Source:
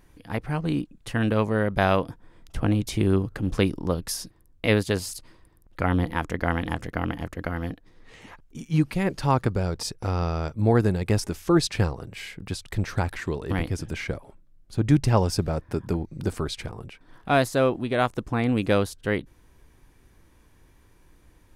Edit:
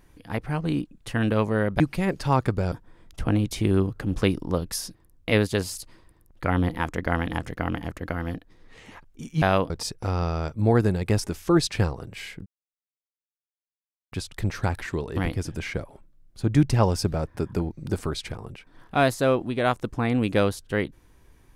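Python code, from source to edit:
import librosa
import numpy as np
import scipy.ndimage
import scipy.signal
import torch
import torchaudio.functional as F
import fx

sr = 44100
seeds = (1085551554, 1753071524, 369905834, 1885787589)

y = fx.edit(x, sr, fx.swap(start_s=1.8, length_s=0.28, other_s=8.78, other_length_s=0.92),
    fx.insert_silence(at_s=12.46, length_s=1.66), tone=tone)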